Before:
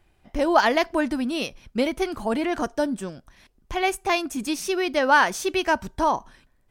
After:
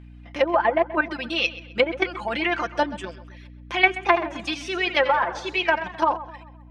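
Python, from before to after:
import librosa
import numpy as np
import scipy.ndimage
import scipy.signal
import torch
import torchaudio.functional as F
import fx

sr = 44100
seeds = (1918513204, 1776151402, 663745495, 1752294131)

y = fx.dereverb_blind(x, sr, rt60_s=0.86)
y = scipy.signal.sosfilt(scipy.signal.butter(2, 290.0, 'highpass', fs=sr, output='sos'), y)
y = fx.level_steps(y, sr, step_db=11)
y = fx.high_shelf(y, sr, hz=4700.0, db=-9.0)
y = y + 0.62 * np.pad(y, (int(5.8 * sr / 1000.0), 0))[:len(y)]
y = fx.add_hum(y, sr, base_hz=60, snr_db=16)
y = fx.env_lowpass_down(y, sr, base_hz=760.0, full_db=-19.0)
y = fx.rider(y, sr, range_db=3, speed_s=2.0)
y = fx.peak_eq(y, sr, hz=2600.0, db=14.5, octaves=2.5)
y = fx.echo_filtered(y, sr, ms=130, feedback_pct=45, hz=3800.0, wet_db=-15.5)
y = fx.echo_warbled(y, sr, ms=83, feedback_pct=37, rate_hz=2.8, cents=200, wet_db=-12, at=(3.92, 6.14))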